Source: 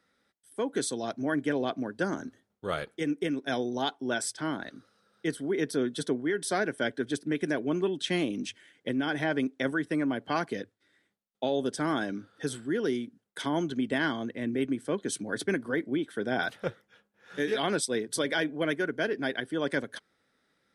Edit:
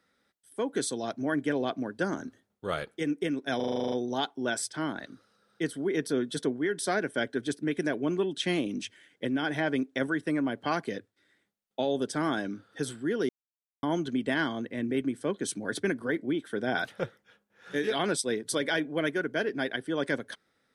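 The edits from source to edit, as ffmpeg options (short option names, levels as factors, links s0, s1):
-filter_complex "[0:a]asplit=12[s0][s1][s2][s3][s4][s5][s6][s7][s8][s9][s10][s11];[s0]atrim=end=3.602[s12];[s1]atrim=start=3.558:end=3.602[s13];[s2]atrim=start=3.558:end=3.602[s14];[s3]atrim=start=3.558:end=3.602[s15];[s4]atrim=start=3.558:end=3.602[s16];[s5]atrim=start=3.558:end=3.602[s17];[s6]atrim=start=3.558:end=3.602[s18];[s7]atrim=start=3.558:end=3.602[s19];[s8]atrim=start=3.558:end=3.602[s20];[s9]atrim=start=3.558:end=12.93,asetpts=PTS-STARTPTS,afade=t=out:st=9.368:d=0.004:c=hsin[s21];[s10]atrim=start=12.93:end=13.47,asetpts=PTS-STARTPTS,volume=0[s22];[s11]atrim=start=13.47,asetpts=PTS-STARTPTS,afade=t=in:d=0.004:c=hsin[s23];[s12][s13]acrossfade=d=0.004:c1=hsin:c2=hsin[s24];[s24][s14]acrossfade=d=0.004:c1=hsin:c2=hsin[s25];[s25][s15]acrossfade=d=0.004:c1=hsin:c2=hsin[s26];[s26][s16]acrossfade=d=0.004:c1=hsin:c2=hsin[s27];[s27][s17]acrossfade=d=0.004:c1=hsin:c2=hsin[s28];[s28][s18]acrossfade=d=0.004:c1=hsin:c2=hsin[s29];[s29][s19]acrossfade=d=0.004:c1=hsin:c2=hsin[s30];[s30][s20]acrossfade=d=0.004:c1=hsin:c2=hsin[s31];[s21][s22][s23]concat=n=3:v=0:a=1[s32];[s31][s32]acrossfade=d=0.004:c1=hsin:c2=hsin"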